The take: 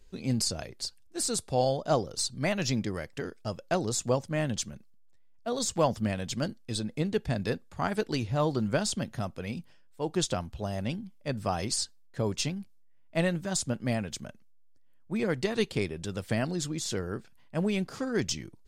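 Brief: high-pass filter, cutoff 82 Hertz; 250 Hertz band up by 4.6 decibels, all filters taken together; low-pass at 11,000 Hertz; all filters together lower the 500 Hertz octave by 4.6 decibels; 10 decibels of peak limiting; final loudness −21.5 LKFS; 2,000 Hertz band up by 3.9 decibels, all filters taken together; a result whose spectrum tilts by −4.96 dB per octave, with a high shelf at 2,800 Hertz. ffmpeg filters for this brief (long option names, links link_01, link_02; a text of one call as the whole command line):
ffmpeg -i in.wav -af "highpass=82,lowpass=11000,equalizer=frequency=250:width_type=o:gain=8,equalizer=frequency=500:width_type=o:gain=-8.5,equalizer=frequency=2000:width_type=o:gain=7.5,highshelf=frequency=2800:gain=-5.5,volume=12dB,alimiter=limit=-11dB:level=0:latency=1" out.wav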